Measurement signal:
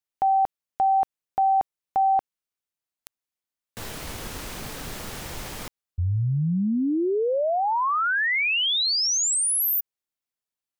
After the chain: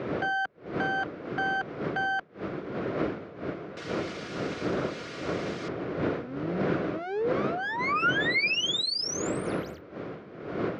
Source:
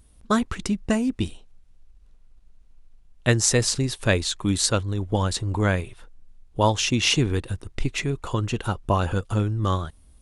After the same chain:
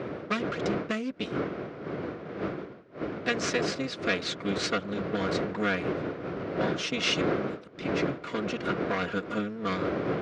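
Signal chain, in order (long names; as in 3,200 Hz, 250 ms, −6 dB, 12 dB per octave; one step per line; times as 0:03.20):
lower of the sound and its delayed copy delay 4.2 ms
wind on the microphone 400 Hz −22 dBFS
downward compressor 10 to 1, threshold −18 dBFS
loudspeaker in its box 190–5,500 Hz, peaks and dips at 240 Hz −7 dB, 860 Hz −10 dB, 1,400 Hz +5 dB, 2,200 Hz +4 dB
level −2.5 dB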